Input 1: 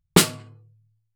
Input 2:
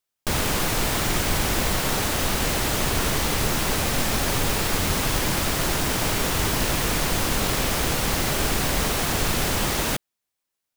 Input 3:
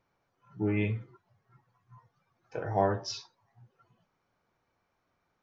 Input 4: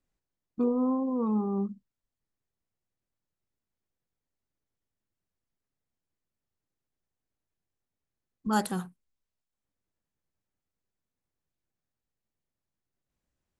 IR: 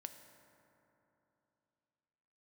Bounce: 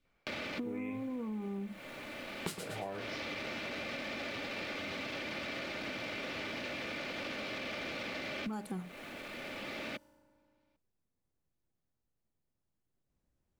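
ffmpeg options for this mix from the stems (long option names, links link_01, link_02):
-filter_complex "[0:a]adelay=2300,volume=-10.5dB,asplit=2[link_01][link_02];[link_02]volume=-10dB[link_03];[1:a]aecho=1:1:3.4:0.48,acrossover=split=300|800|1600[link_04][link_05][link_06][link_07];[link_04]acompressor=threshold=-32dB:ratio=4[link_08];[link_05]acompressor=threshold=-33dB:ratio=4[link_09];[link_06]acompressor=threshold=-43dB:ratio=4[link_10];[link_07]acompressor=threshold=-32dB:ratio=4[link_11];[link_08][link_09][link_10][link_11]amix=inputs=4:normalize=0,asoftclip=type=tanh:threshold=-25.5dB,volume=2dB,asplit=2[link_12][link_13];[link_13]volume=-23.5dB[link_14];[2:a]adelay=50,volume=-1.5dB,asplit=2[link_15][link_16];[link_16]volume=-6dB[link_17];[3:a]tiltshelf=frequency=970:gain=4.5,acompressor=threshold=-25dB:ratio=6,volume=0dB,asplit=2[link_18][link_19];[link_19]apad=whole_len=474752[link_20];[link_12][link_20]sidechaincompress=threshold=-46dB:ratio=5:attack=16:release=1450[link_21];[link_21][link_15]amix=inputs=2:normalize=0,highpass=150,equalizer=frequency=340:width_type=q:width=4:gain=-6,equalizer=frequency=930:width_type=q:width=4:gain=-10,equalizer=frequency=2300:width_type=q:width=4:gain=8,lowpass=frequency=4500:width=0.5412,lowpass=frequency=4500:width=1.3066,alimiter=level_in=3dB:limit=-24dB:level=0:latency=1:release=35,volume=-3dB,volume=0dB[link_22];[4:a]atrim=start_sample=2205[link_23];[link_14][link_17]amix=inputs=2:normalize=0[link_24];[link_24][link_23]afir=irnorm=-1:irlink=0[link_25];[link_03]aecho=0:1:115|230|345|460|575:1|0.35|0.122|0.0429|0.015[link_26];[link_01][link_18][link_22][link_25][link_26]amix=inputs=5:normalize=0,acompressor=threshold=-37dB:ratio=6"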